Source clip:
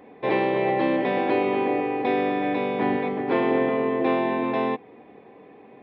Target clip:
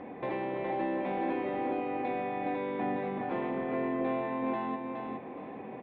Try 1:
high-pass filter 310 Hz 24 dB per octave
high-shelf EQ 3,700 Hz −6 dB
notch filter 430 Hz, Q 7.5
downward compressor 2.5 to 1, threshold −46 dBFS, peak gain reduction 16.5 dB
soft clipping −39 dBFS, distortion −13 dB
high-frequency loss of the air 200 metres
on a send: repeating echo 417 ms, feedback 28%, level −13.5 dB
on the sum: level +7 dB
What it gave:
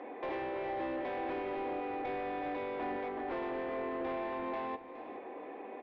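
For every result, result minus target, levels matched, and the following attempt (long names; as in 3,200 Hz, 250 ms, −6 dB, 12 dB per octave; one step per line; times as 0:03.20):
soft clipping: distortion +11 dB; echo-to-direct −9.5 dB; 250 Hz band −3.0 dB
high-pass filter 310 Hz 24 dB per octave
high-shelf EQ 3,700 Hz −6 dB
notch filter 430 Hz, Q 7.5
downward compressor 2.5 to 1, threshold −46 dBFS, peak gain reduction 16.5 dB
soft clipping −30.5 dBFS, distortion −24 dB
high-frequency loss of the air 200 metres
on a send: repeating echo 417 ms, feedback 28%, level −13.5 dB
on the sum: level +7 dB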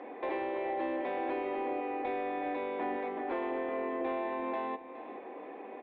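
echo-to-direct −9.5 dB; 250 Hz band −3.0 dB
high-pass filter 310 Hz 24 dB per octave
high-shelf EQ 3,700 Hz −6 dB
notch filter 430 Hz, Q 7.5
downward compressor 2.5 to 1, threshold −46 dBFS, peak gain reduction 16.5 dB
soft clipping −30.5 dBFS, distortion −24 dB
high-frequency loss of the air 200 metres
on a send: repeating echo 417 ms, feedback 28%, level −4 dB
on the sum: level +7 dB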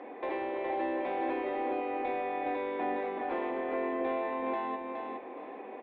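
250 Hz band −3.5 dB
high-shelf EQ 3,700 Hz −6 dB
notch filter 430 Hz, Q 7.5
downward compressor 2.5 to 1, threshold −46 dBFS, peak gain reduction 17.5 dB
soft clipping −30.5 dBFS, distortion −24 dB
high-frequency loss of the air 200 metres
on a send: repeating echo 417 ms, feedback 28%, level −4 dB
on the sum: level +7 dB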